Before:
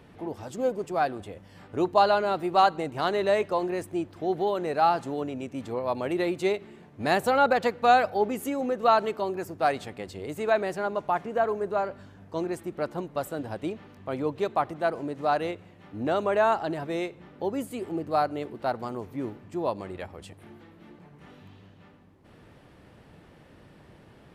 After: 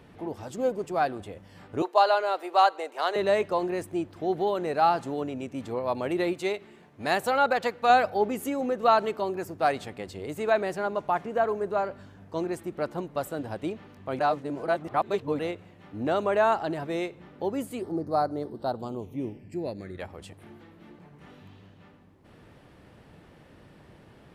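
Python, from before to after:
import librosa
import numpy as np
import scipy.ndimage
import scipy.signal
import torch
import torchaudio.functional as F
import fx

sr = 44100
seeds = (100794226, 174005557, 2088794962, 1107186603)

y = fx.highpass(x, sr, hz=440.0, slope=24, at=(1.82, 3.16))
y = fx.low_shelf(y, sr, hz=450.0, db=-6.5, at=(6.33, 7.9))
y = fx.phaser_stages(y, sr, stages=12, low_hz=350.0, high_hz=2800.0, hz=fx.line((17.81, 0.29), (19.98, 0.08)), feedback_pct=25, at=(17.81, 19.98), fade=0.02)
y = fx.edit(y, sr, fx.reverse_span(start_s=14.19, length_s=1.2), tone=tone)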